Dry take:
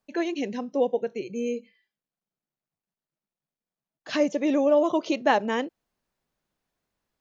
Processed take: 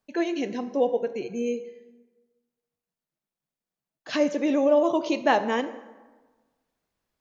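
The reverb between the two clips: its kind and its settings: plate-style reverb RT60 1.3 s, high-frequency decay 0.6×, DRR 10.5 dB

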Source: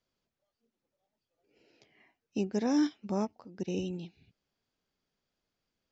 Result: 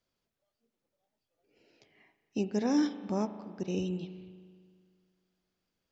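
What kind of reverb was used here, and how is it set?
spring tank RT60 2 s, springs 38 ms, chirp 55 ms, DRR 11 dB

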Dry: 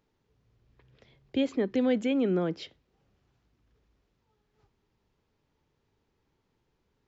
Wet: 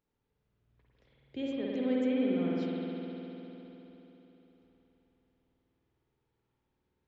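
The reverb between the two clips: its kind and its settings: spring tank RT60 3.8 s, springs 51 ms, chirp 20 ms, DRR -5.5 dB; trim -12 dB

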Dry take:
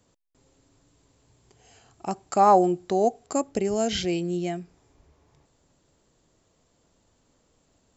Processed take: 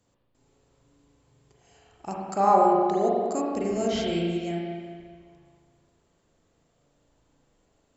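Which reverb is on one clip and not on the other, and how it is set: spring tank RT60 1.8 s, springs 35/42 ms, chirp 65 ms, DRR -3.5 dB; trim -6 dB

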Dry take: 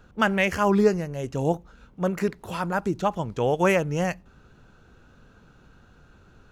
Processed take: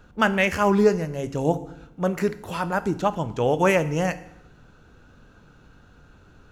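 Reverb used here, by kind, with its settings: FDN reverb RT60 0.79 s, low-frequency decay 1.3×, high-frequency decay 0.95×, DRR 11.5 dB; trim +1.5 dB

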